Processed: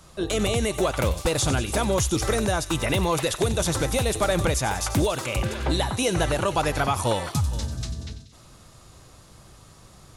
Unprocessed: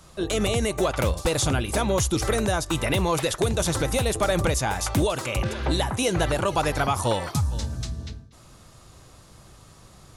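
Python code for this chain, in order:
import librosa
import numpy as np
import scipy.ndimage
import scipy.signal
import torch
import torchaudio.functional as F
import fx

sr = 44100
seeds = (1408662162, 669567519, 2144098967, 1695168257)

y = fx.echo_wet_highpass(x, sr, ms=93, feedback_pct=68, hz=3000.0, wet_db=-10.5)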